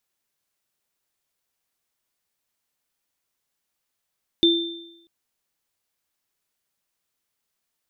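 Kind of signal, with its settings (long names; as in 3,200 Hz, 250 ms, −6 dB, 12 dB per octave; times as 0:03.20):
inharmonic partials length 0.64 s, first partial 336 Hz, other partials 3,570 Hz, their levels −0.5 dB, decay 0.85 s, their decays 0.84 s, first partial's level −14 dB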